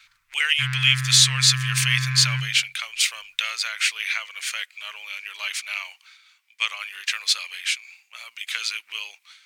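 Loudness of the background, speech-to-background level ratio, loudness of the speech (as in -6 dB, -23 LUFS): -27.5 LUFS, 5.5 dB, -22.0 LUFS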